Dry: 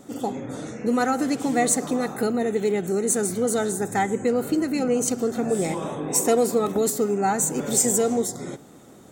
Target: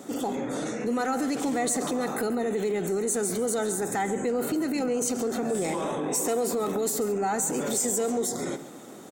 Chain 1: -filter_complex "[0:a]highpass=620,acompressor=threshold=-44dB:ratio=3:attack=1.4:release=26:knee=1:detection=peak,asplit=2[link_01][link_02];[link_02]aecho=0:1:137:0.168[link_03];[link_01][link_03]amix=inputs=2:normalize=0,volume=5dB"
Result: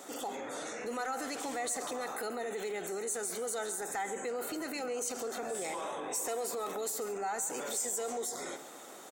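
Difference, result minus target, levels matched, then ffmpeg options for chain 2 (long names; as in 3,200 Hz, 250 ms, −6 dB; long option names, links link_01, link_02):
downward compressor: peak gain reduction +7.5 dB; 250 Hz band −7.0 dB
-filter_complex "[0:a]highpass=210,acompressor=threshold=-32.5dB:ratio=3:attack=1.4:release=26:knee=1:detection=peak,asplit=2[link_01][link_02];[link_02]aecho=0:1:137:0.168[link_03];[link_01][link_03]amix=inputs=2:normalize=0,volume=5dB"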